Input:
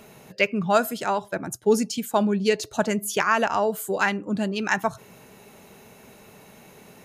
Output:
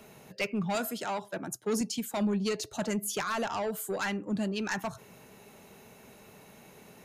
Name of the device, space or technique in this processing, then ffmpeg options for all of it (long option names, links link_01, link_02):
one-band saturation: -filter_complex "[0:a]acrossover=split=220|3400[link_01][link_02][link_03];[link_02]asoftclip=type=tanh:threshold=-24dB[link_04];[link_01][link_04][link_03]amix=inputs=3:normalize=0,asettb=1/sr,asplit=3[link_05][link_06][link_07];[link_05]atrim=end=0.754[link_08];[link_06]atrim=start=0.75:end=1.81,asetpts=PTS-STARTPTS,afade=type=in:duration=0.004:curve=qsin,afade=type=out:start_time=1.056:duration=0.004:curve=qsin,highpass=150[link_09];[link_07]atrim=start=1.806[link_10];[link_08][link_09]acrossfade=duration=0.004:curve1=hsin:curve2=qsin[link_11];[link_11][link_10]acrossfade=duration=0.004:curve1=qsin:curve2=hsin,volume=-4.5dB"